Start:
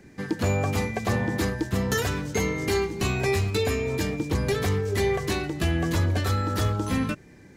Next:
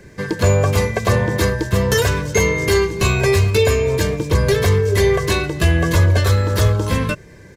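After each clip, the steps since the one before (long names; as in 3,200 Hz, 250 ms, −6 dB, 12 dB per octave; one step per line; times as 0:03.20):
comb filter 1.9 ms, depth 58%
level +8 dB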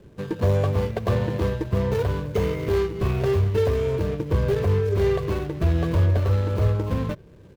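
running median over 25 samples
dynamic equaliser 8,300 Hz, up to −5 dB, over −50 dBFS, Q 1
level −5.5 dB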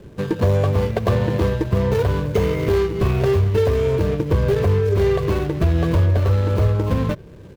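downward compressor 2 to 1, threshold −24 dBFS, peak gain reduction 5.5 dB
level +7.5 dB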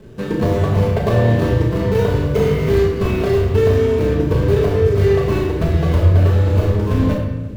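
on a send: flutter between parallel walls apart 5.9 metres, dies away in 0.3 s
on the sum: rectangular room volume 610 cubic metres, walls mixed, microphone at 1.5 metres
level −1.5 dB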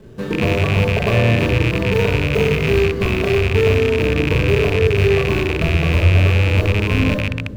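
loose part that buzzes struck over −19 dBFS, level −9 dBFS
level −1 dB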